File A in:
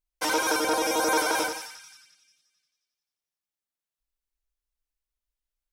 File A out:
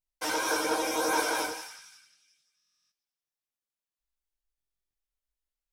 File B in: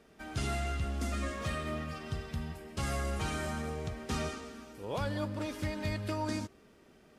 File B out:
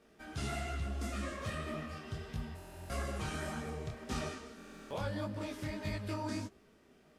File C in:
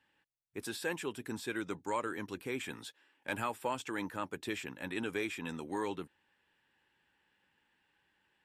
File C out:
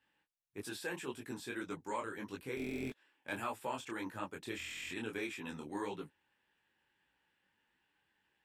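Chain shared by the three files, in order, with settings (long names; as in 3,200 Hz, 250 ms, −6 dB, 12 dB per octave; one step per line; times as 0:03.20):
buffer that repeats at 0:02.55/0:04.56, samples 1,024, times 14
micro pitch shift up and down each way 58 cents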